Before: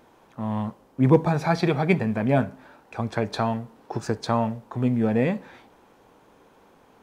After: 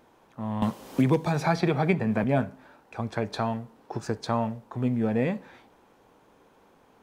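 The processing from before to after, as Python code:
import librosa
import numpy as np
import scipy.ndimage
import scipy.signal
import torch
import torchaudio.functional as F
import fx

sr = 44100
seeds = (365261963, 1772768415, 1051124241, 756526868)

y = fx.band_squash(x, sr, depth_pct=100, at=(0.62, 2.24))
y = y * librosa.db_to_amplitude(-3.5)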